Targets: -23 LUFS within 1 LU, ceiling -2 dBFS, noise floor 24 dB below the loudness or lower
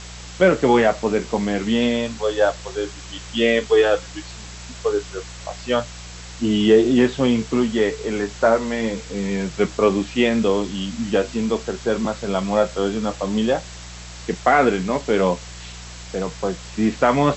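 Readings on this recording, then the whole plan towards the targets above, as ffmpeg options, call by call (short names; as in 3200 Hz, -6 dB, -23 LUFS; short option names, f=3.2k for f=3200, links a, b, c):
hum 60 Hz; harmonics up to 180 Hz; hum level -37 dBFS; noise floor -37 dBFS; noise floor target -45 dBFS; loudness -20.5 LUFS; peak -2.5 dBFS; loudness target -23.0 LUFS
-> -af "bandreject=f=60:t=h:w=4,bandreject=f=120:t=h:w=4,bandreject=f=180:t=h:w=4"
-af "afftdn=nr=8:nf=-37"
-af "volume=-2.5dB"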